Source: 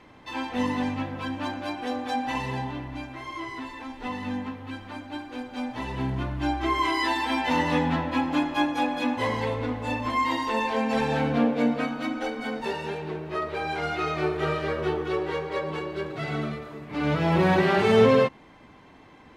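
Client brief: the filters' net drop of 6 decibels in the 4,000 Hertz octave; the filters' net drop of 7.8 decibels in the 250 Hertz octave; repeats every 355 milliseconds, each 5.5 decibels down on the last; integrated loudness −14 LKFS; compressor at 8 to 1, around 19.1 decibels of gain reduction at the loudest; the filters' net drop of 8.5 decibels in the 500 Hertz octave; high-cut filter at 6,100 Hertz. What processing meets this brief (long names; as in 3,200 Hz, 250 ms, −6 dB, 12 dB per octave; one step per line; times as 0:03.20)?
low-pass filter 6,100 Hz
parametric band 250 Hz −7.5 dB
parametric band 500 Hz −8 dB
parametric band 4,000 Hz −7.5 dB
downward compressor 8 to 1, threshold −42 dBFS
repeating echo 355 ms, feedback 53%, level −5.5 dB
level +29.5 dB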